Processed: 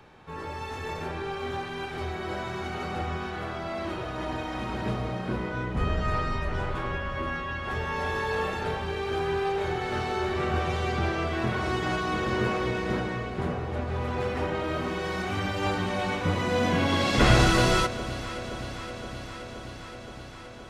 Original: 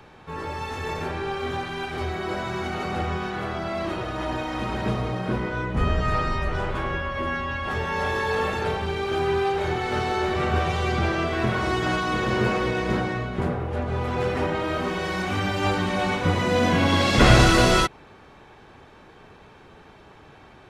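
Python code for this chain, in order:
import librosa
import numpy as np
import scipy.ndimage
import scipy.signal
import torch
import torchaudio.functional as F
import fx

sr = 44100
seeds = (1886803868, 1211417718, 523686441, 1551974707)

y = fx.echo_alternate(x, sr, ms=261, hz=860.0, feedback_pct=87, wet_db=-13.5)
y = F.gain(torch.from_numpy(y), -4.5).numpy()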